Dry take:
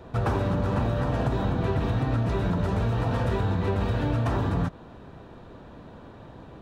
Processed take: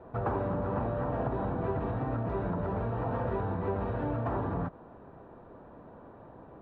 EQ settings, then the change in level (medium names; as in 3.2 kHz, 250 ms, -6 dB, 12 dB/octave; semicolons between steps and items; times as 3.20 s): low-pass 1.1 kHz 12 dB/octave; bass shelf 280 Hz -10.5 dB; 0.0 dB